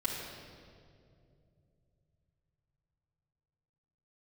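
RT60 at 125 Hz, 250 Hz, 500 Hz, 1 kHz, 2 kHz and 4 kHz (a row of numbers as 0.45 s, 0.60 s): 5.0 s, 3.4 s, 3.0 s, 2.0 s, 1.7 s, 1.6 s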